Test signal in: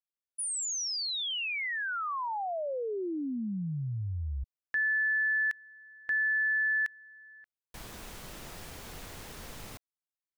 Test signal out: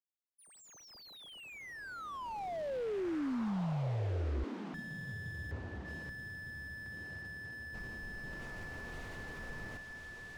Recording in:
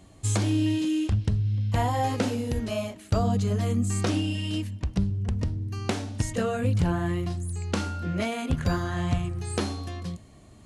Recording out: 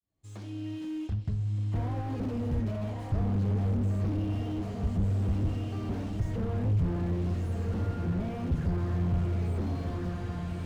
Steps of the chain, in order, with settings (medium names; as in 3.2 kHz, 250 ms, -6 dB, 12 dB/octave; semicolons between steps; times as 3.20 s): fade-in on the opening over 2.55 s; low-pass 7.7 kHz 12 dB/octave; bass shelf 480 Hz +2 dB; on a send: echo that smears into a reverb 1317 ms, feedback 45%, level -8 dB; on the sum: waveshaping leveller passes 1; slew-rate limiter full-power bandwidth 17 Hz; trim -6 dB